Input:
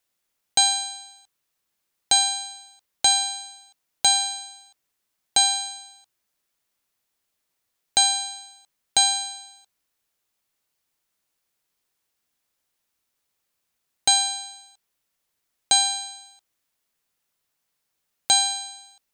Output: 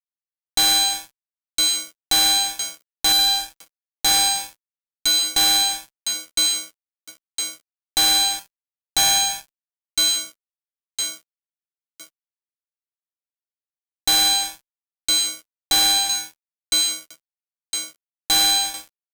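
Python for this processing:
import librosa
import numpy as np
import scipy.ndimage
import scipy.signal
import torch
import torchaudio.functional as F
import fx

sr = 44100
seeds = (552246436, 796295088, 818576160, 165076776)

y = fx.echo_wet_highpass(x, sr, ms=1010, feedback_pct=38, hz=3100.0, wet_db=-9.0)
y = fx.dynamic_eq(y, sr, hz=3600.0, q=3.4, threshold_db=-37.0, ratio=4.0, max_db=6)
y = fx.fuzz(y, sr, gain_db=31.0, gate_db=-39.0)
y = F.gain(torch.from_numpy(y), -2.0).numpy()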